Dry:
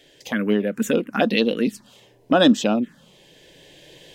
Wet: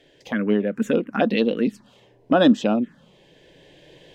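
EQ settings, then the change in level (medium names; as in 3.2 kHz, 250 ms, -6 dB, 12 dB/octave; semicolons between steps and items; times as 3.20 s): low-pass 2 kHz 6 dB/octave; 0.0 dB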